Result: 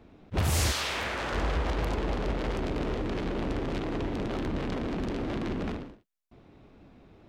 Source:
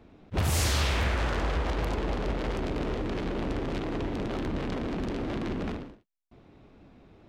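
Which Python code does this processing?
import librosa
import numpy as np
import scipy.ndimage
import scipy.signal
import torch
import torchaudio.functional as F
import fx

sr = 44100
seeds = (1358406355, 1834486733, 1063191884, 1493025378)

y = fx.highpass(x, sr, hz=fx.line((0.71, 820.0), (1.32, 250.0)), slope=6, at=(0.71, 1.32), fade=0.02)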